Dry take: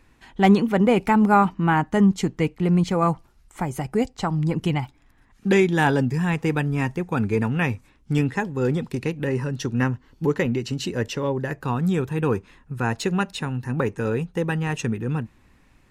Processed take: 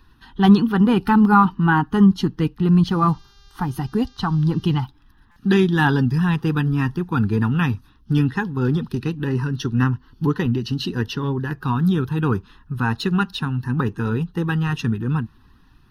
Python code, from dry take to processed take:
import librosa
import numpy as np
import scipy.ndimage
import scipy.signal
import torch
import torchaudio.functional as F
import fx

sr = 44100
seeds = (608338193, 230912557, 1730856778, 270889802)

y = fx.spec_quant(x, sr, step_db=15)
y = fx.dmg_buzz(y, sr, base_hz=400.0, harmonics=18, level_db=-58.0, tilt_db=0, odd_only=False, at=(2.85, 4.83), fade=0.02)
y = fx.fixed_phaser(y, sr, hz=2200.0, stages=6)
y = fx.buffer_glitch(y, sr, at_s=(5.31,), block=256, repeats=8)
y = F.gain(torch.from_numpy(y), 5.5).numpy()